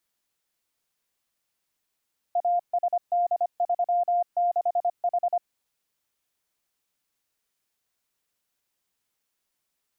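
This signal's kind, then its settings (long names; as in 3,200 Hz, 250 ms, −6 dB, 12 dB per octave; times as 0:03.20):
Morse code "ASD36H" 25 words per minute 702 Hz −20 dBFS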